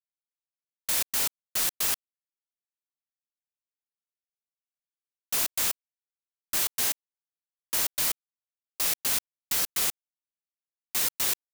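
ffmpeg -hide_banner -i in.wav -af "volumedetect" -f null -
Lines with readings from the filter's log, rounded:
mean_volume: -32.7 dB
max_volume: -12.8 dB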